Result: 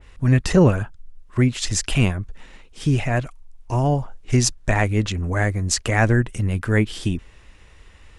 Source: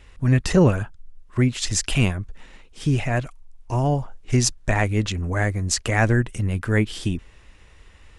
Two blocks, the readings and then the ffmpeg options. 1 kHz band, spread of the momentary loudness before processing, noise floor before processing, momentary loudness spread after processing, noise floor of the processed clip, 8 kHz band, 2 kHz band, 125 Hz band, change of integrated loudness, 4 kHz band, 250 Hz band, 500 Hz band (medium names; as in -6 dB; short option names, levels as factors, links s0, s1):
+1.5 dB, 10 LU, -50 dBFS, 10 LU, -49 dBFS, +0.5 dB, +1.0 dB, +1.5 dB, +1.5 dB, +0.5 dB, +1.5 dB, +1.5 dB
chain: -af "adynamicequalizer=threshold=0.0178:dfrequency=2200:dqfactor=0.7:tfrequency=2200:tqfactor=0.7:attack=5:release=100:ratio=0.375:range=1.5:mode=cutabove:tftype=highshelf,volume=1.19"